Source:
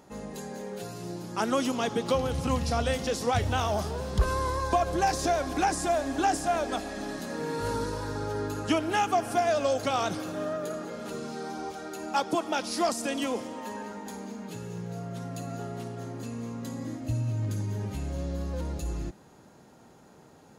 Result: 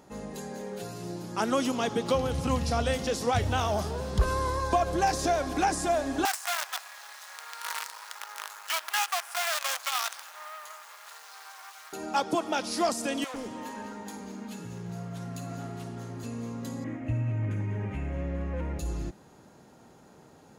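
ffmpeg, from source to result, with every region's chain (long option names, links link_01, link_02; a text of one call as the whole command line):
ffmpeg -i in.wav -filter_complex "[0:a]asettb=1/sr,asplit=3[link_01][link_02][link_03];[link_01]atrim=end=6.254[link_04];[link_02]atrim=start=6.25:end=11.93,asetpts=PTS-STARTPTS,afade=type=in:duration=0.004:curve=qsin,afade=type=out:start_time=5.676:duration=0.004:curve=qsin,acrusher=bits=5:dc=4:mix=0:aa=0.000001,highpass=frequency=950:width=0.5412,highpass=frequency=950:width=1.3066[link_05];[link_03]atrim=start=11.926[link_06];[link_04][link_05]acrossfade=duration=0.004:curve1=hsin:curve2=qsin[link_07];[link_07][link_06]acrossfade=duration=0.004:curve1=qsin:curve2=hsin,asettb=1/sr,asplit=3[link_08][link_09][link_10];[link_08]atrim=end=13.244[link_11];[link_09]atrim=start=13.24:end=16.24,asetpts=PTS-STARTPTS,afade=type=in:duration=0.004:curve=qsin,afade=type=out:start_time=2.996:duration=0.004:curve=qsin,asoftclip=type=hard:threshold=-32dB,acrossover=split=530[link_12][link_13];[link_12]adelay=100[link_14];[link_14][link_13]amix=inputs=2:normalize=0,atrim=end_sample=132300[link_15];[link_10]atrim=start=16.236[link_16];[link_11][link_15]acrossfade=duration=0.004:curve1=hsin:curve2=qsin[link_17];[link_17][link_16]acrossfade=duration=0.004:curve1=qsin:curve2=hsin,asettb=1/sr,asplit=3[link_18][link_19][link_20];[link_18]atrim=end=16.844[link_21];[link_19]atrim=start=16.84:end=18.79,asetpts=PTS-STARTPTS,afade=type=in:duration=0.004:curve=qsin,afade=type=out:start_time=1.946:duration=0.004:curve=qsin,lowpass=8700,highshelf=frequency=3200:width_type=q:width=3:gain=-11,aeval=exprs='val(0)+0.00126*sin(2*PI*1900*n/s)':channel_layout=same[link_22];[link_20]atrim=start=18.786[link_23];[link_21][link_22]acrossfade=duration=0.004:curve1=hsin:curve2=qsin[link_24];[link_24][link_23]acrossfade=duration=0.004:curve1=qsin:curve2=hsin" out.wav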